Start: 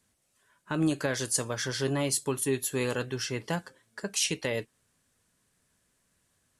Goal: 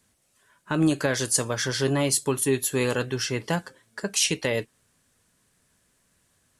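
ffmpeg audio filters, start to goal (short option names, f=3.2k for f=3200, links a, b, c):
-af "acontrast=30"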